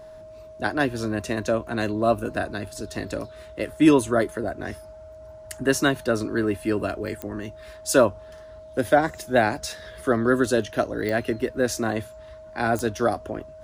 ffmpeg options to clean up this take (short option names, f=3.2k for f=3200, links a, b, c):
-af "adeclick=t=4,bandreject=f=630:w=30"